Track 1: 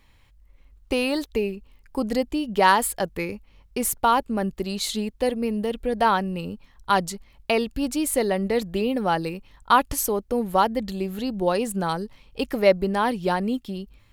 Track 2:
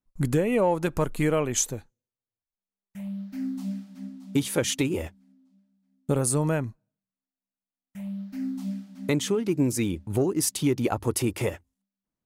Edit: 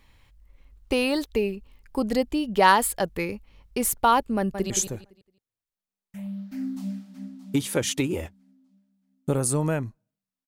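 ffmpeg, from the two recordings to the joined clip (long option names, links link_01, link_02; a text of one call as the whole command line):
ffmpeg -i cue0.wav -i cue1.wav -filter_complex "[0:a]apad=whole_dur=10.47,atrim=end=10.47,atrim=end=4.702[link_01];[1:a]atrim=start=1.508:end=7.28[link_02];[link_01][link_02]acrossfade=duration=0.004:curve1=hsin:curve2=hsin,asplit=2[link_03][link_04];[link_04]afade=type=in:start_time=4.37:duration=0.01,afade=type=out:start_time=4.7:duration=0.01,aecho=0:1:170|340|510|680:0.421697|0.126509|0.0379527|0.0113858[link_05];[link_03][link_05]amix=inputs=2:normalize=0" out.wav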